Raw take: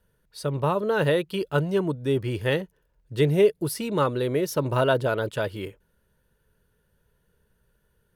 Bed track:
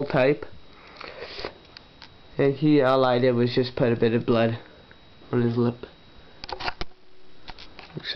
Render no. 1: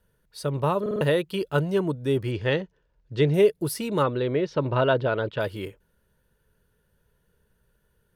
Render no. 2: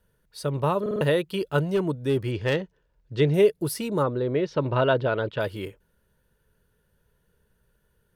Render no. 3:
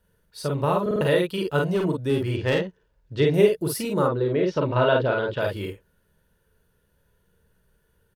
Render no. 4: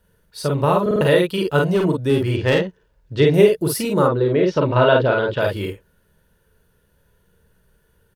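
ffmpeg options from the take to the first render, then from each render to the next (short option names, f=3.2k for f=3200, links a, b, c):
-filter_complex "[0:a]asettb=1/sr,asplit=3[a][b][c];[a]atrim=end=2.314[d];[b]atrim=start=2.31:end=3.34,asetpts=PTS-STARTPTS,afade=t=in:d=0.004:c=qsin,afade=t=out:st=1.026:d=0.004:c=qsin,lowpass=f=6k:w=0.5412,lowpass=f=6k:w=1.3066[e];[c]atrim=start=3.336[f];[d][e]acrossfade=d=0.004:c1=hsin:c2=qsin[g];[g][f]acrossfade=d=0.004:c1=qsin:c2=hsin,asplit=3[h][i][j];[h]afade=t=out:st=4.02:d=0.02[k];[i]lowpass=f=4.1k:w=0.5412,lowpass=f=4.1k:w=1.3066,afade=t=in:st=4.02:d=0.02,afade=t=out:st=5.39:d=0.02[l];[j]afade=t=in:st=5.39:d=0.02[m];[k][l][m]amix=inputs=3:normalize=0,asplit=5[n][o][p][q][r];[n]atrim=end=0.862[s];[o]atrim=start=0.808:end=0.862[t];[p]atrim=start=0.808:end=0.862[u];[q]atrim=start=0.808:end=0.862[v];[r]atrim=start=1.008[w];[s][t]acrossfade=d=0.004:c1=hsin:c2=hsin[x];[x][u]acrossfade=d=0.004:c1=hsin:c2=hsin[y];[y][v]acrossfade=d=0.004:c1=hsin:c2=hsin[z];[z][w]acrossfade=d=0.004:c1=hsin:c2=hsin"
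-filter_complex "[0:a]asettb=1/sr,asplit=3[a][b][c];[a]atrim=end=1.704[d];[b]atrim=start=1.7:end=3.2,asetpts=PTS-STARTPTS,afade=t=in:d=0.004:c=qsin,afade=t=out:st=1.496:d=0.004:c=qsin,asoftclip=type=hard:threshold=-17dB[e];[c]atrim=start=3.196[f];[d][e]acrossfade=d=0.004:c1=hsin:c2=qsin[g];[g][f]acrossfade=d=0.004:c1=qsin:c2=hsin,asplit=3[h][i][j];[h]afade=t=out:st=3.87:d=0.02[k];[i]equalizer=f=2.7k:t=o:w=1.2:g=-13,afade=t=in:st=3.87:d=0.02,afade=t=out:st=4.34:d=0.02[l];[j]afade=t=in:st=4.34:d=0.02[m];[k][l][m]amix=inputs=3:normalize=0"
-af "aecho=1:1:39|50:0.501|0.668"
-af "volume=5.5dB,alimiter=limit=-2dB:level=0:latency=1"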